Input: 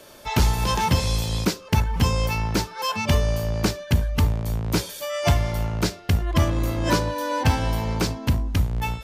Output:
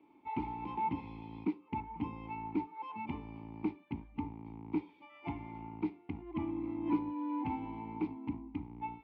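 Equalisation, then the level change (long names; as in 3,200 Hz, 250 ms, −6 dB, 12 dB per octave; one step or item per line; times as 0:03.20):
formant filter u
high-frequency loss of the air 480 metres
−1.0 dB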